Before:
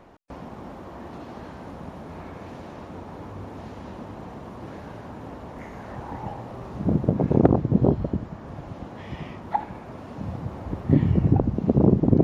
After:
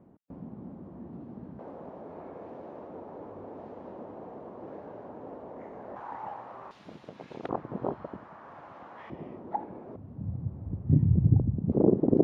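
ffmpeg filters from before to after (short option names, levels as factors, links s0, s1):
-af "asetnsamples=n=441:p=0,asendcmd='1.59 bandpass f 500;5.96 bandpass f 1100;6.71 bandpass f 3600;7.49 bandpass f 1200;9.1 bandpass f 390;9.96 bandpass f 110;11.72 bandpass f 420',bandpass=f=190:t=q:w=1.3:csg=0"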